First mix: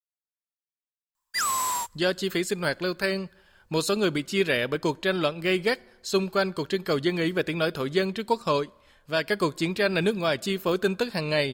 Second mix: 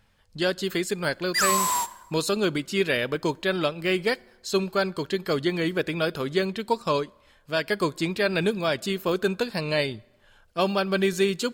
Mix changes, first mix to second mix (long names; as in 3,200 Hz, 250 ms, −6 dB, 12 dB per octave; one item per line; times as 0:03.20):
speech: entry −1.60 s
background: send on